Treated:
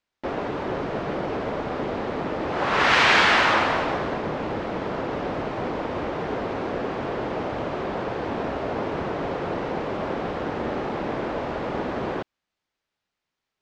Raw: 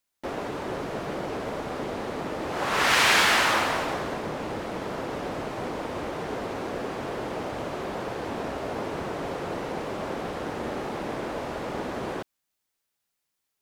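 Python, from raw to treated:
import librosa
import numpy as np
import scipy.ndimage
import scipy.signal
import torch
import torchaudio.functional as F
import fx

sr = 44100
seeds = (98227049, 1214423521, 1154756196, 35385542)

y = fx.air_absorb(x, sr, metres=160.0)
y = F.gain(torch.from_numpy(y), 4.5).numpy()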